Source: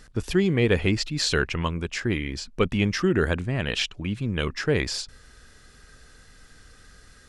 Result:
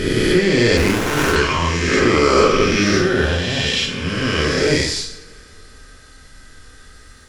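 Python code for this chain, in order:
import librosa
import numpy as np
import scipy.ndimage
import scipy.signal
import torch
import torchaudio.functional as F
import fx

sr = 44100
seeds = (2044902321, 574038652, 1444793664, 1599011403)

y = fx.spec_swells(x, sr, rise_s=2.65)
y = fx.peak_eq(y, sr, hz=780.0, db=11.5, octaves=2.0, at=(1.87, 2.45))
y = fx.notch_comb(y, sr, f0_hz=320.0, at=(2.97, 4.06))
y = fx.rev_double_slope(y, sr, seeds[0], early_s=0.54, late_s=2.9, knee_db=-26, drr_db=-1.0)
y = fx.running_max(y, sr, window=9, at=(0.77, 1.36))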